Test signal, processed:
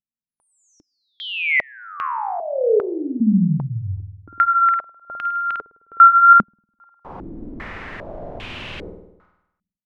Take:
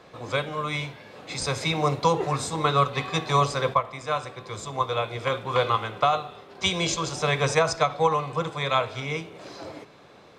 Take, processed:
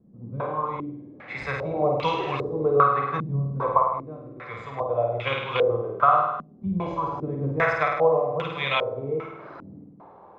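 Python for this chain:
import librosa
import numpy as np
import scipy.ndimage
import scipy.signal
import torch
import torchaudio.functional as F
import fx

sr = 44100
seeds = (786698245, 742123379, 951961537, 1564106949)

y = fx.vibrato(x, sr, rate_hz=0.8, depth_cents=17.0)
y = fx.room_flutter(y, sr, wall_m=8.8, rt60_s=0.9)
y = fx.filter_held_lowpass(y, sr, hz=2.5, low_hz=210.0, high_hz=2800.0)
y = y * 10.0 ** (-5.0 / 20.0)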